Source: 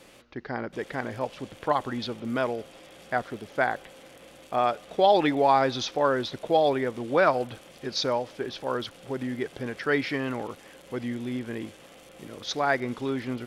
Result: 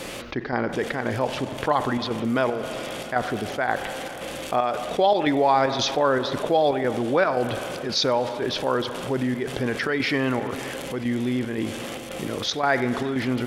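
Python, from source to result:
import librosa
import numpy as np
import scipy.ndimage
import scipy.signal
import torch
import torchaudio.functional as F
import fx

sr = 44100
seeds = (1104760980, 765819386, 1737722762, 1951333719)

y = fx.chopper(x, sr, hz=1.9, depth_pct=60, duty_pct=75)
y = fx.rev_spring(y, sr, rt60_s=2.0, pass_ms=(39, 45), chirp_ms=75, drr_db=15.0)
y = fx.env_flatten(y, sr, amount_pct=50)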